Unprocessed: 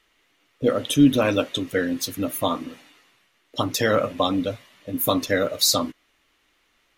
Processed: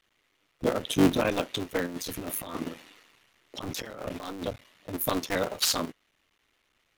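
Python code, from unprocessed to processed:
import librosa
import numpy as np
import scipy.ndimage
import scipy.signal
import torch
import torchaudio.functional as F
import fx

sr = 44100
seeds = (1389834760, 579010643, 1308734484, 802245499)

y = fx.cycle_switch(x, sr, every=3, mode='muted')
y = fx.over_compress(y, sr, threshold_db=-32.0, ratio=-1.0, at=(1.86, 4.45))
y = y * 10.0 ** (-4.5 / 20.0)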